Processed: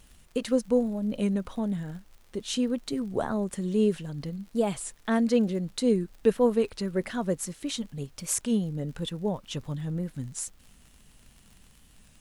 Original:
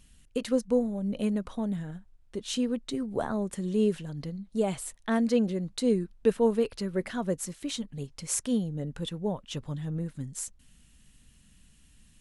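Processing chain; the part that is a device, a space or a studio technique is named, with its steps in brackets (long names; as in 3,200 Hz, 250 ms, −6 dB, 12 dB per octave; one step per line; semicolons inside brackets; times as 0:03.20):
warped LP (wow of a warped record 33 1/3 rpm, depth 100 cents; surface crackle 59 per second −44 dBFS; pink noise bed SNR 37 dB)
level +1.5 dB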